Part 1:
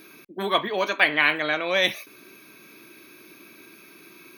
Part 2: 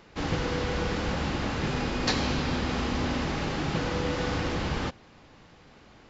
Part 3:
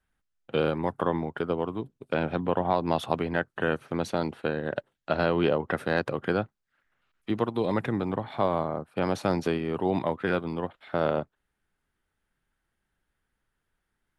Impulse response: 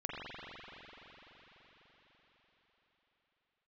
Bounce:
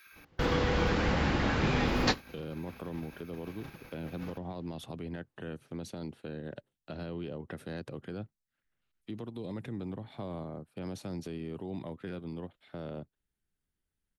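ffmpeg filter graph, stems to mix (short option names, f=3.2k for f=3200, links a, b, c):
-filter_complex "[0:a]highpass=f=1.5k:t=q:w=2.4,volume=-10dB,asplit=2[a][b];[1:a]highshelf=f=5.2k:g=-8,volume=1dB[c];[2:a]equalizer=f=1.1k:w=0.5:g=-12,adelay=1800,volume=-4.5dB[d];[b]apad=whole_len=268626[e];[c][e]sidechaingate=range=-37dB:threshold=-53dB:ratio=16:detection=peak[f];[a][d]amix=inputs=2:normalize=0,acrossover=split=330[g][h];[h]acompressor=threshold=-38dB:ratio=2[i];[g][i]amix=inputs=2:normalize=0,alimiter=level_in=6.5dB:limit=-24dB:level=0:latency=1:release=41,volume=-6.5dB,volume=0dB[j];[f][j]amix=inputs=2:normalize=0"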